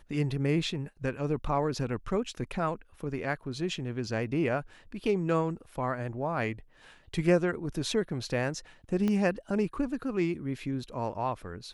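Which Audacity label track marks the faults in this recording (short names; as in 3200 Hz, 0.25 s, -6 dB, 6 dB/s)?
9.080000	9.080000	pop -18 dBFS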